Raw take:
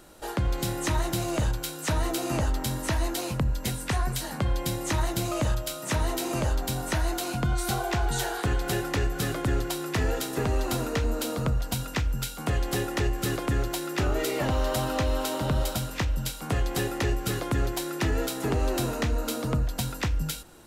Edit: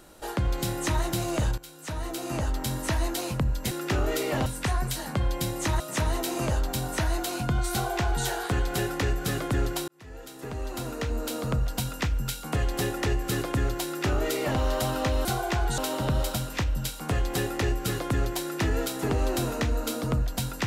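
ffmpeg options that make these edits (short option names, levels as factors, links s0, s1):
-filter_complex "[0:a]asplit=8[s0][s1][s2][s3][s4][s5][s6][s7];[s0]atrim=end=1.58,asetpts=PTS-STARTPTS,afade=t=out:st=1.576:d=0.004:c=hsin:silence=0.188365[s8];[s1]atrim=start=1.58:end=3.712,asetpts=PTS-STARTPTS,afade=t=in:d=1.18:silence=0.188365[s9];[s2]atrim=start=13.788:end=14.542[s10];[s3]atrim=start=3.708:end=5.052[s11];[s4]atrim=start=5.738:end=9.82,asetpts=PTS-STARTPTS,afade=t=out:st=4.078:d=0.004:c=hsin[s12];[s5]atrim=start=9.82:end=15.192,asetpts=PTS-STARTPTS,afade=t=in:d=1.75[s13];[s6]atrim=start=7.658:end=8.192[s14];[s7]atrim=start=15.188[s15];[s8][s9]concat=n=2:v=0:a=1[s16];[s16][s10]acrossfade=d=0.004:c1=hsin:c2=hsin[s17];[s17][s11]acrossfade=d=0.004:c1=hsin:c2=hsin[s18];[s12][s13]concat=n=2:v=0:a=1[s19];[s18][s19]acrossfade=d=0.004:c1=hsin:c2=hsin[s20];[s20][s14]acrossfade=d=0.004:c1=hsin:c2=hsin[s21];[s21][s15]acrossfade=d=0.004:c1=hsin:c2=hsin"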